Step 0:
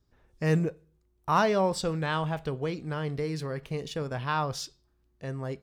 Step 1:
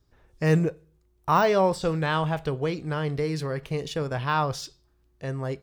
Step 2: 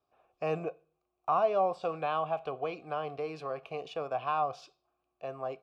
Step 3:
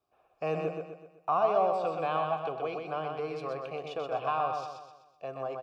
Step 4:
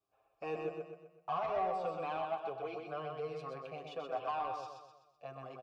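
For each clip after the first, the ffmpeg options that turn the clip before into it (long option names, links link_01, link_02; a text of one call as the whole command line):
ffmpeg -i in.wav -af "deesser=0.9,equalizer=frequency=220:width_type=o:width=0.32:gain=-6.5,volume=4.5dB" out.wav
ffmpeg -i in.wav -filter_complex "[0:a]asplit=3[link_01][link_02][link_03];[link_01]bandpass=frequency=730:width_type=q:width=8,volume=0dB[link_04];[link_02]bandpass=frequency=1090:width_type=q:width=8,volume=-6dB[link_05];[link_03]bandpass=frequency=2440:width_type=q:width=8,volume=-9dB[link_06];[link_04][link_05][link_06]amix=inputs=3:normalize=0,acrossover=split=410[link_07][link_08];[link_08]acompressor=threshold=-39dB:ratio=2[link_09];[link_07][link_09]amix=inputs=2:normalize=0,volume=8dB" out.wav
ffmpeg -i in.wav -af "aecho=1:1:126|252|378|504|630|756:0.596|0.268|0.121|0.0543|0.0244|0.011" out.wav
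ffmpeg -i in.wav -filter_complex "[0:a]asoftclip=type=tanh:threshold=-21dB,asplit=2[link_01][link_02];[link_02]adelay=7.2,afreqshift=0.45[link_03];[link_01][link_03]amix=inputs=2:normalize=1,volume=-3.5dB" out.wav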